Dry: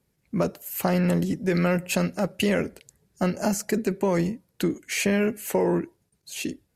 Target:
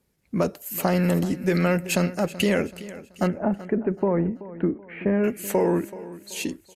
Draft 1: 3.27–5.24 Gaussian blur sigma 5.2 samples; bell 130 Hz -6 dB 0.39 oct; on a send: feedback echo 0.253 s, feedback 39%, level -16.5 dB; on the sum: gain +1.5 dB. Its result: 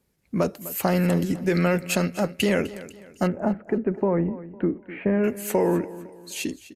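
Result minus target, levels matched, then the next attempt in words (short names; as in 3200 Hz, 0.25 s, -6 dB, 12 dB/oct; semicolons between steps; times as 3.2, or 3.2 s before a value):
echo 0.127 s early
3.27–5.24 Gaussian blur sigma 5.2 samples; bell 130 Hz -6 dB 0.39 oct; on a send: feedback echo 0.38 s, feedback 39%, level -16.5 dB; on the sum: gain +1.5 dB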